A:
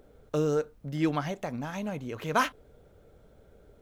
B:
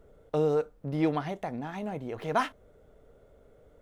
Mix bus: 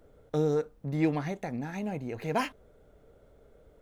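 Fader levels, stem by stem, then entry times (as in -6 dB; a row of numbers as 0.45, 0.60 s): -7.0, -2.0 dB; 0.00, 0.00 s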